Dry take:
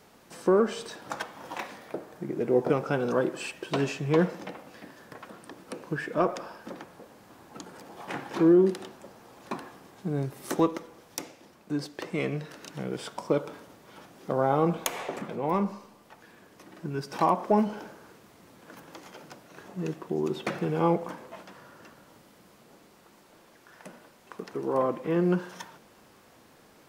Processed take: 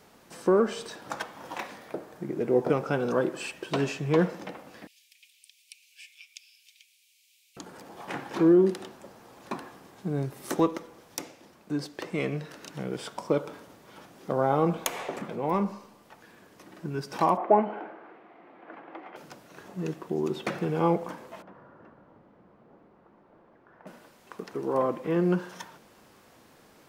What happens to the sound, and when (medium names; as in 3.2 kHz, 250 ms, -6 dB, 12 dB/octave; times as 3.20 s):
4.87–7.57 s: Chebyshev high-pass 2.3 kHz, order 6
17.37–19.16 s: cabinet simulation 280–2600 Hz, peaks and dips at 330 Hz +7 dB, 730 Hz +10 dB, 1.2 kHz +3 dB, 2.1 kHz +4 dB
21.42–23.87 s: low-pass 1.2 kHz